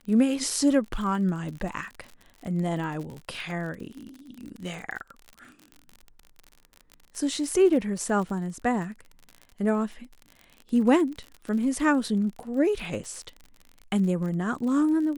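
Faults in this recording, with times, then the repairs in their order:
surface crackle 44 per second −34 dBFS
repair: click removal

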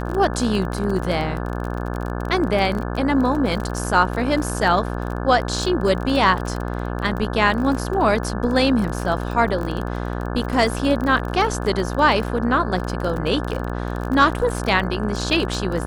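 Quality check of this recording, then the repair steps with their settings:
mains buzz 60 Hz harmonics 29 −26 dBFS
surface crackle 27 per second −25 dBFS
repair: click removal
hum removal 60 Hz, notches 29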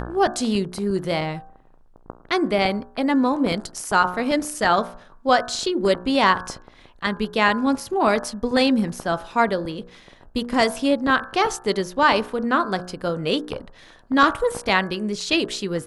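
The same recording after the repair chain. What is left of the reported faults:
none of them is left

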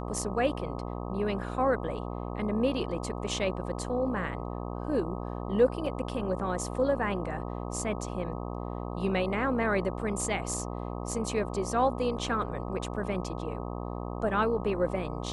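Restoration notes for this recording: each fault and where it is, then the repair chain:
mains buzz 60 Hz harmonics 21 −36 dBFS
0:05.86: drop-out 3.5 ms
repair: hum removal 60 Hz, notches 21
repair the gap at 0:05.86, 3.5 ms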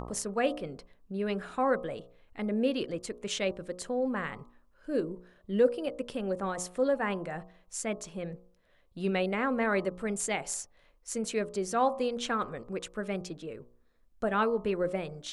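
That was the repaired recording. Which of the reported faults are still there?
none of them is left

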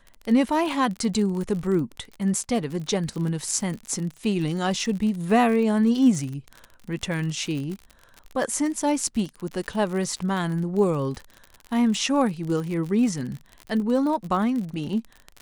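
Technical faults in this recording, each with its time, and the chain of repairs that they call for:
surface crackle 47 per second −30 dBFS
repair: click removal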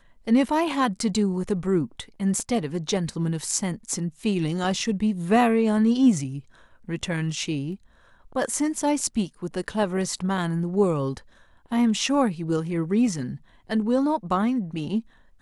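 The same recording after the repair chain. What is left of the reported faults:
none of them is left

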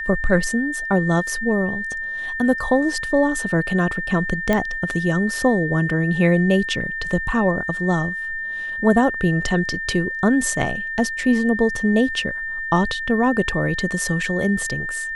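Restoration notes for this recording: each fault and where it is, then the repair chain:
whistle 1,800 Hz −25 dBFS
0:04.53: click −7 dBFS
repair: click removal
notch filter 1,800 Hz, Q 30

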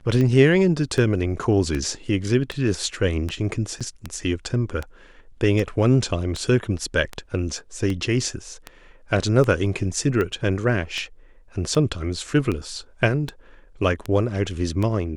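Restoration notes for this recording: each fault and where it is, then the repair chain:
scratch tick 78 rpm −14 dBFS
0:03.80–0:03.81: drop-out 6.4 ms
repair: click removal
repair the gap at 0:03.80, 6.4 ms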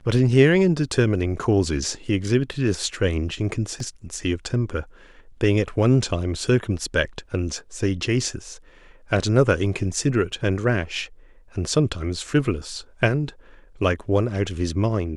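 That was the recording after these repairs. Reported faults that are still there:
none of them is left

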